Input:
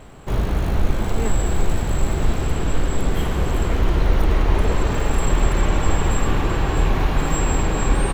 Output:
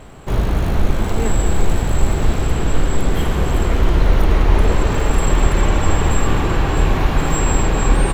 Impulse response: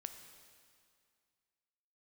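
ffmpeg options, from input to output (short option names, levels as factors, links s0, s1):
-filter_complex "[0:a]asplit=2[s0][s1];[1:a]atrim=start_sample=2205,asetrate=30870,aresample=44100[s2];[s1][s2]afir=irnorm=-1:irlink=0,volume=1.26[s3];[s0][s3]amix=inputs=2:normalize=0,volume=0.75"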